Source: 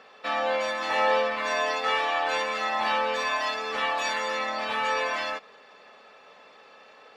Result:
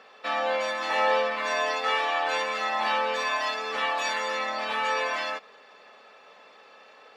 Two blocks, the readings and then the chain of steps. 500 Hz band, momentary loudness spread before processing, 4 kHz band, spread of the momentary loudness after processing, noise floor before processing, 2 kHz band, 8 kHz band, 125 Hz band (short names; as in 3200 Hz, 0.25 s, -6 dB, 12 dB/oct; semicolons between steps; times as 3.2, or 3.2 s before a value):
-0.5 dB, 4 LU, 0.0 dB, 4 LU, -53 dBFS, 0.0 dB, 0.0 dB, n/a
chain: low shelf 130 Hz -10 dB